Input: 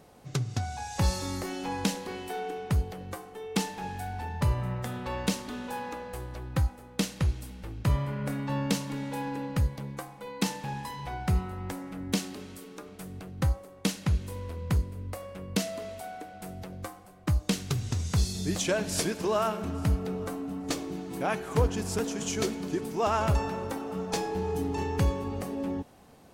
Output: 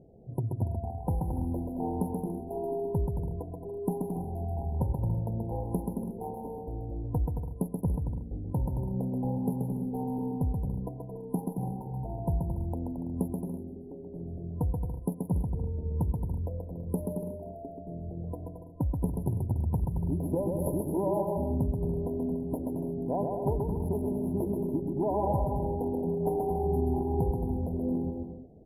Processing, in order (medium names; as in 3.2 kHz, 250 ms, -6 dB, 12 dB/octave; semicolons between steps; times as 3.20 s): local Wiener filter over 41 samples; FFT band-reject 1.1–11 kHz; compression, threshold -29 dBFS, peak gain reduction 10 dB; on a send: bouncing-ball echo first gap 120 ms, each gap 0.7×, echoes 5; on the sum: speed mistake 48 kHz file played as 44.1 kHz; trim +2.5 dB